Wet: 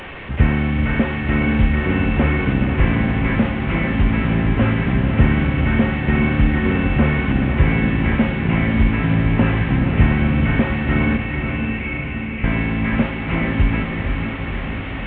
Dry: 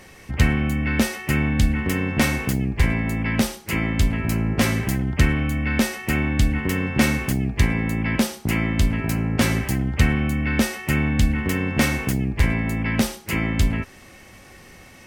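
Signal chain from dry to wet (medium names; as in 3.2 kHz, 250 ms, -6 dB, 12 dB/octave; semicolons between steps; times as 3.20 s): one-bit delta coder 16 kbps, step -30 dBFS; 11.16–12.44 s: Butterworth band-pass 2.4 kHz, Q 3.1; echo that smears into a reverb 482 ms, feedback 70%, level -5.5 dB; trim +3 dB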